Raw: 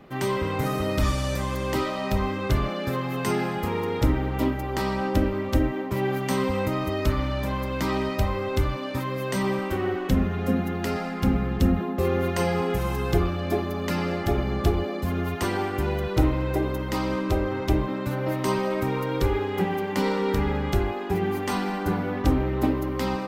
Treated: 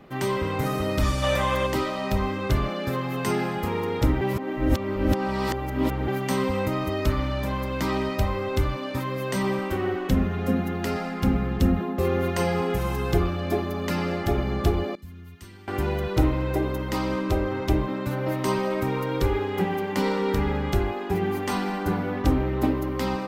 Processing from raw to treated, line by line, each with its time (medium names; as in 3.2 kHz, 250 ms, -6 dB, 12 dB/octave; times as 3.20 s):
1.23–1.67 s: time-frequency box 500–3800 Hz +8 dB
4.21–6.08 s: reverse
14.95–15.68 s: amplifier tone stack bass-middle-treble 6-0-2